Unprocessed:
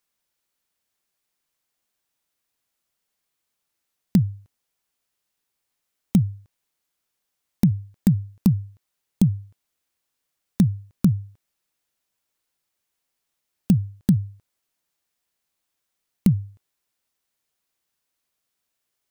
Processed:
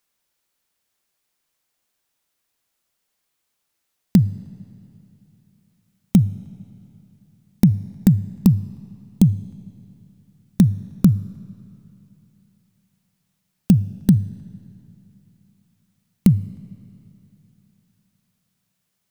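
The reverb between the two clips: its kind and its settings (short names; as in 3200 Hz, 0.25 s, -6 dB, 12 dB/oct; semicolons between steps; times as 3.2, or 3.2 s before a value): digital reverb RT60 3.1 s, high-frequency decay 0.8×, pre-delay 0 ms, DRR 18.5 dB; gain +4 dB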